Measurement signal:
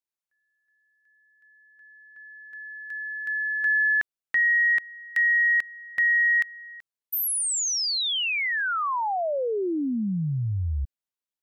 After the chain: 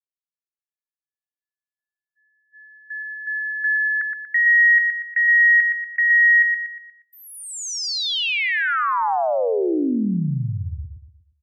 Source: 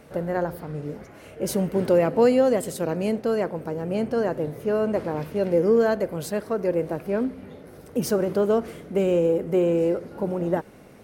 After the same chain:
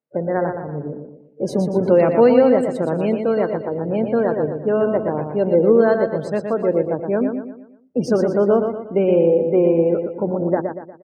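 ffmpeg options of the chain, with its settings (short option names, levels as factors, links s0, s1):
-filter_complex "[0:a]agate=range=0.251:threshold=0.00891:ratio=16:release=34:detection=peak,afftdn=nr=33:nf=-37,highpass=130,lowpass=5800,highshelf=f=3800:g=-6,asplit=2[s0][s1];[s1]aecho=0:1:119|238|357|476|595:0.501|0.21|0.0884|0.0371|0.0156[s2];[s0][s2]amix=inputs=2:normalize=0,volume=1.78"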